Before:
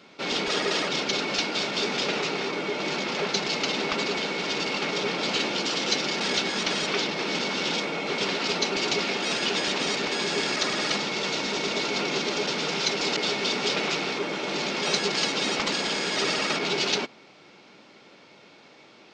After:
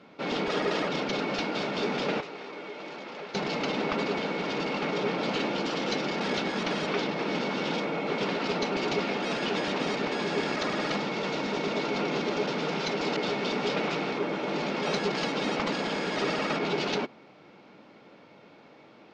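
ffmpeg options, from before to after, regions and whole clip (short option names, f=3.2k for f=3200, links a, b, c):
-filter_complex "[0:a]asettb=1/sr,asplit=3[a][b][c];[a]atrim=end=2.204[d];[b]atrim=start=2.2:end=3.35,asetpts=PTS-STARTPTS,afade=t=in:d=0.004:c=qsin,afade=t=out:st=1.146:d=0.004:c=qsin,bass=f=250:g=-10,treble=f=4k:g=0,acrossover=split=290|1700[e][f][g];[e]acompressor=threshold=-52dB:ratio=4[h];[f]acompressor=threshold=-42dB:ratio=4[i];[g]acompressor=threshold=-40dB:ratio=4[j];[h][i][j]amix=inputs=3:normalize=0[k];[c]atrim=start=3.346[l];[d][k]acrossfade=d=0.004:c1=hsin:c2=qsin[m];[m][l]acrossfade=d=0.004:c1=qsin:c2=hsin,lowpass=f=1.1k:p=1,bandreject=f=380:w=12,volume=2dB"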